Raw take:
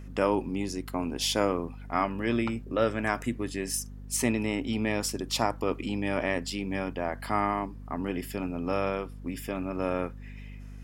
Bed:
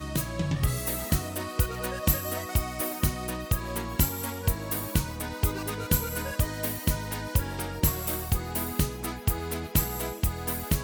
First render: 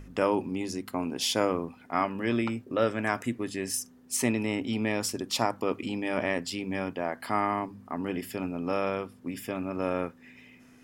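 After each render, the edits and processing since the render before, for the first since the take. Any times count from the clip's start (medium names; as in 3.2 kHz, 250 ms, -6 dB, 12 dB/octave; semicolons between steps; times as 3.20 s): de-hum 50 Hz, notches 4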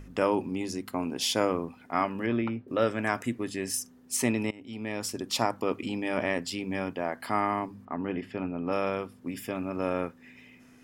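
2.26–2.68 s: distance through air 320 m; 4.51–5.30 s: fade in, from -23 dB; 7.85–8.72 s: low-pass 2.7 kHz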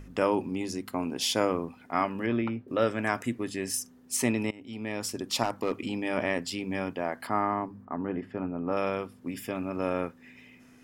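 5.43–5.88 s: overload inside the chain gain 20 dB; 7.27–8.77 s: high-order bell 5.6 kHz -10 dB 3 oct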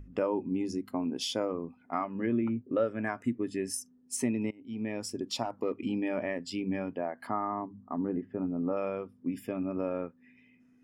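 compression 3:1, threshold -30 dBFS, peak gain reduction 8 dB; spectral contrast expander 1.5:1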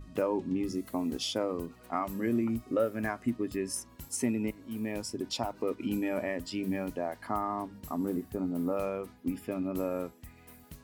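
add bed -23 dB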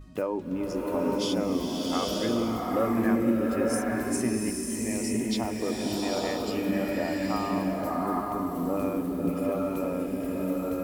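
swelling reverb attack 900 ms, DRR -3.5 dB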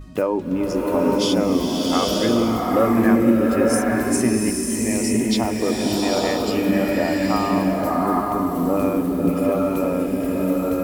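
trim +8.5 dB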